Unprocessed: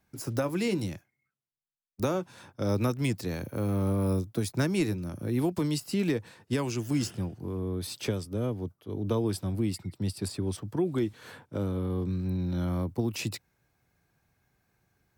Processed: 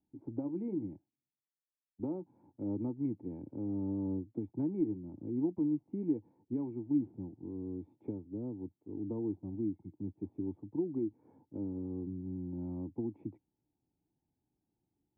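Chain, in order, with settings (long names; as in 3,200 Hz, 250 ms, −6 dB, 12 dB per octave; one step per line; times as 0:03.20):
formant resonators in series u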